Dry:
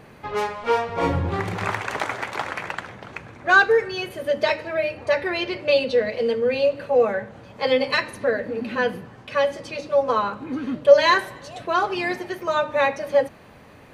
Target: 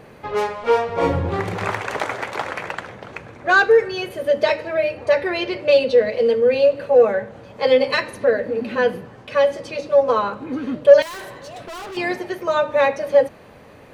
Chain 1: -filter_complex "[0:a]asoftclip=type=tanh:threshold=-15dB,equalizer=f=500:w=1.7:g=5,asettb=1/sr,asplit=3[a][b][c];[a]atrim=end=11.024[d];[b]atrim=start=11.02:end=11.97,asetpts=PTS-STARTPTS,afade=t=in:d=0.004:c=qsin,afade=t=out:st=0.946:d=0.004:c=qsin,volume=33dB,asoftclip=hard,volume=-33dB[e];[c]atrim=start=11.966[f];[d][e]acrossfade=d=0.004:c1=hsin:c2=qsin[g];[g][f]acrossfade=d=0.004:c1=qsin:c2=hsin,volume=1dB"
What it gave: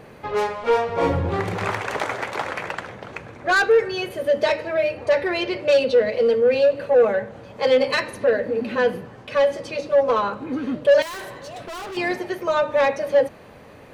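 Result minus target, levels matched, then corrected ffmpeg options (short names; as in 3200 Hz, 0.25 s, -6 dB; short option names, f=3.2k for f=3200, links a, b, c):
soft clip: distortion +10 dB
-filter_complex "[0:a]asoftclip=type=tanh:threshold=-6dB,equalizer=f=500:w=1.7:g=5,asettb=1/sr,asplit=3[a][b][c];[a]atrim=end=11.024[d];[b]atrim=start=11.02:end=11.97,asetpts=PTS-STARTPTS,afade=t=in:d=0.004:c=qsin,afade=t=out:st=0.946:d=0.004:c=qsin,volume=33dB,asoftclip=hard,volume=-33dB[e];[c]atrim=start=11.966[f];[d][e]acrossfade=d=0.004:c1=hsin:c2=qsin[g];[g][f]acrossfade=d=0.004:c1=qsin:c2=hsin,volume=1dB"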